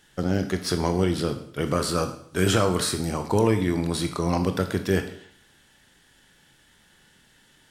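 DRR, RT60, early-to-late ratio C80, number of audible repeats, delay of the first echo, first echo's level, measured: 7.0 dB, 0.60 s, 13.5 dB, no echo audible, no echo audible, no echo audible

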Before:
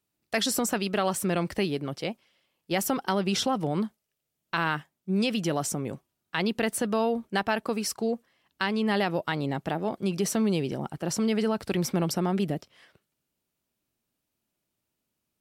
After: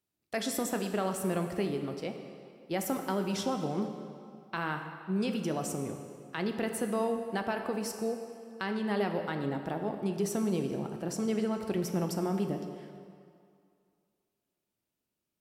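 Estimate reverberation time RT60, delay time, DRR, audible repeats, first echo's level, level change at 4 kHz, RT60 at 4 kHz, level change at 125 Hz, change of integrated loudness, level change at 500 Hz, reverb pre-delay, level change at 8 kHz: 2.3 s, no echo audible, 5.0 dB, no echo audible, no echo audible, −10.0 dB, 1.8 s, −5.0 dB, −5.0 dB, −3.5 dB, 10 ms, −7.5 dB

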